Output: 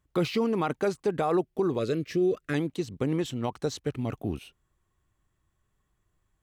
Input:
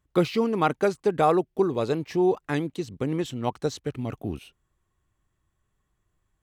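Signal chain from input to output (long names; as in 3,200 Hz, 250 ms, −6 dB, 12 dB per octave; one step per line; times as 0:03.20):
brickwall limiter −17.5 dBFS, peak gain reduction 8.5 dB
0:01.79–0:02.54: Butterworth band-reject 870 Hz, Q 1.4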